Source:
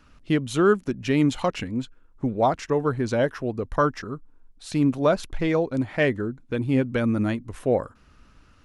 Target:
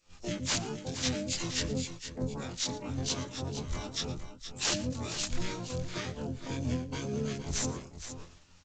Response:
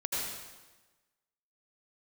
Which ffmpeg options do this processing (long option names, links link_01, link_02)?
-filter_complex "[0:a]afftfilt=real='re':imag='-im':win_size=2048:overlap=0.75,bass=frequency=250:gain=1,treble=frequency=4000:gain=7,acompressor=threshold=-33dB:ratio=8,bandreject=frequency=50:width_type=h:width=6,bandreject=frequency=100:width_type=h:width=6,bandreject=frequency=150:width_type=h:width=6,bandreject=frequency=200:width_type=h:width=6,acrossover=split=220|3000[link_01][link_02][link_03];[link_02]acompressor=threshold=-54dB:ratio=4[link_04];[link_01][link_04][link_03]amix=inputs=3:normalize=0,agate=range=-33dB:threshold=-49dB:ratio=3:detection=peak,asoftclip=type=tanh:threshold=-32dB,aemphasis=mode=production:type=75fm,aeval=exprs='(mod(20*val(0)+1,2)-1)/20':channel_layout=same,asplit=4[link_05][link_06][link_07][link_08];[link_06]asetrate=29433,aresample=44100,atempo=1.49831,volume=-1dB[link_09];[link_07]asetrate=35002,aresample=44100,atempo=1.25992,volume=-18dB[link_10];[link_08]asetrate=88200,aresample=44100,atempo=0.5,volume=0dB[link_11];[link_05][link_09][link_10][link_11]amix=inputs=4:normalize=0,aecho=1:1:115|468:0.112|0.299,volume=4dB" -ar 16000 -c:a g722